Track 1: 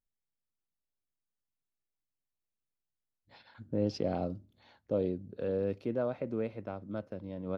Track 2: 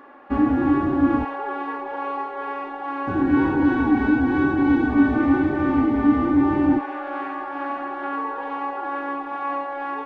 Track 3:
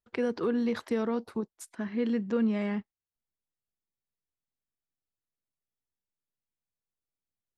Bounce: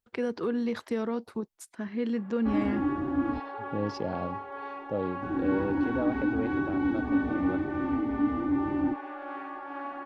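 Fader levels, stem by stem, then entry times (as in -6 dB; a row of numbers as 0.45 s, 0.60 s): -0.5 dB, -9.5 dB, -1.0 dB; 0.00 s, 2.15 s, 0.00 s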